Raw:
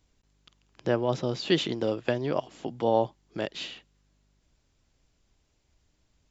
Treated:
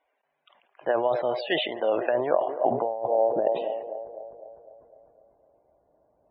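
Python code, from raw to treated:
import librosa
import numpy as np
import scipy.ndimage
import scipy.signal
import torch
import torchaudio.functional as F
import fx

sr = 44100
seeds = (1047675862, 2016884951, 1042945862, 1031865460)

p1 = x + fx.echo_banded(x, sr, ms=252, feedback_pct=58, hz=550.0, wet_db=-14.5, dry=0)
p2 = fx.filter_sweep_bandpass(p1, sr, from_hz=2000.0, to_hz=530.0, start_s=1.89, end_s=3.22, q=1.0)
p3 = fx.peak_eq(p2, sr, hz=660.0, db=15.0, octaves=1.1)
p4 = fx.over_compress(p3, sr, threshold_db=-25.0, ratio=-1.0)
p5 = fx.spec_topn(p4, sr, count=64)
p6 = scipy.signal.sosfilt(scipy.signal.butter(2, 2900.0, 'lowpass', fs=sr, output='sos'), p5)
p7 = fx.low_shelf(p6, sr, hz=120.0, db=5.0)
p8 = fx.notch(p7, sr, hz=1300.0, q=12.0)
y = fx.sustainer(p8, sr, db_per_s=64.0)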